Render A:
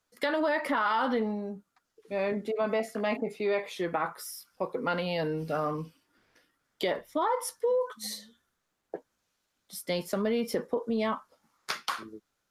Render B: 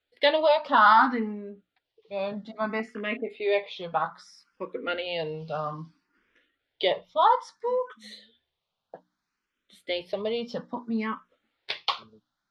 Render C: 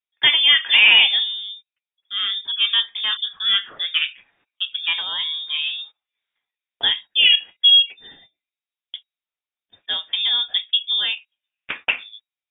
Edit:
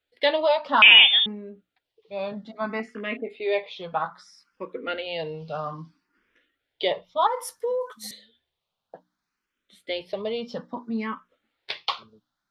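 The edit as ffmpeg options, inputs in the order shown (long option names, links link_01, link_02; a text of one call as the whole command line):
ffmpeg -i take0.wav -i take1.wav -i take2.wav -filter_complex "[1:a]asplit=3[link_01][link_02][link_03];[link_01]atrim=end=0.822[link_04];[2:a]atrim=start=0.818:end=1.262[link_05];[link_02]atrim=start=1.258:end=7.272[link_06];[0:a]atrim=start=7.268:end=8.112[link_07];[link_03]atrim=start=8.108[link_08];[link_04][link_05]acrossfade=duration=0.004:curve1=hsin:curve2=hsin[link_09];[link_09][link_06]acrossfade=duration=0.004:curve1=hsin:curve2=hsin[link_10];[link_10][link_07]acrossfade=duration=0.004:curve1=hsin:curve2=hsin[link_11];[link_11][link_08]acrossfade=duration=0.004:curve1=hsin:curve2=hsin" out.wav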